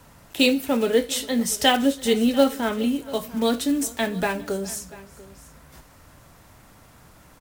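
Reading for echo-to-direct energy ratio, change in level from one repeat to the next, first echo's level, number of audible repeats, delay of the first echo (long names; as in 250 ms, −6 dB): −18.0 dB, repeats not evenly spaced, −23.0 dB, 2, 411 ms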